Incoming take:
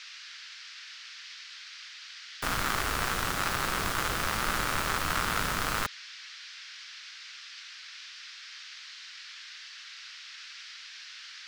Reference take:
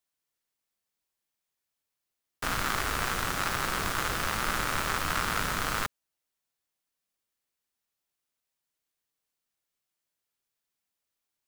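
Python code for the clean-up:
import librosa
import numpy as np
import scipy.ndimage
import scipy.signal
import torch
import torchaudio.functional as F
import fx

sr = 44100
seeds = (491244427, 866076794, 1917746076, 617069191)

y = fx.noise_reduce(x, sr, print_start_s=7.36, print_end_s=7.86, reduce_db=30.0)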